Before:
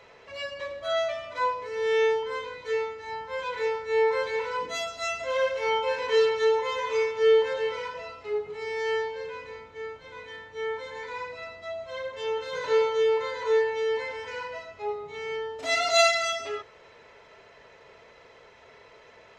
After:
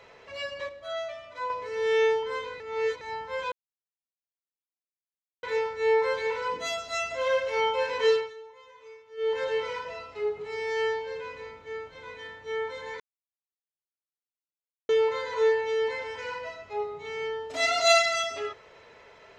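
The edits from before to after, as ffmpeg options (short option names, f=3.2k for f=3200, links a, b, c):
-filter_complex "[0:a]asplit=10[a][b][c][d][e][f][g][h][i][j];[a]atrim=end=0.692[k];[b]atrim=start=0.688:end=1.502,asetpts=PTS-STARTPTS,volume=-7dB[l];[c]atrim=start=1.498:end=2.602[m];[d]atrim=start=2.598:end=3.012,asetpts=PTS-STARTPTS,areverse[n];[e]atrim=start=3.008:end=3.52,asetpts=PTS-STARTPTS,afade=t=out:st=0.508:d=0.004:c=hsin,apad=pad_dur=1.91[o];[f]atrim=start=3.52:end=6.43,asetpts=PTS-STARTPTS,afade=t=in:d=0.004:c=hsin,afade=t=out:st=2.65:d=0.26:silence=0.0749894[p];[g]atrim=start=6.43:end=7.26,asetpts=PTS-STARTPTS,volume=-22.5dB[q];[h]atrim=start=7.26:end=11.09,asetpts=PTS-STARTPTS,afade=t=in:d=0.26:silence=0.0749894,afade=t=out:st=3.826:d=0.004:c=hsin[r];[i]atrim=start=11.09:end=12.98,asetpts=PTS-STARTPTS,volume=0[s];[j]atrim=start=12.98,asetpts=PTS-STARTPTS,afade=t=in:d=0.004:c=hsin[t];[k][l]acrossfade=d=0.004:c1=hsin:c2=hsin[u];[u][m]acrossfade=d=0.004:c1=hsin:c2=hsin[v];[v][n]acrossfade=d=0.004:c1=hsin:c2=hsin[w];[o][p][q][r][s][t]concat=n=6:v=0:a=1[x];[w][x]acrossfade=d=0.004:c1=hsin:c2=hsin"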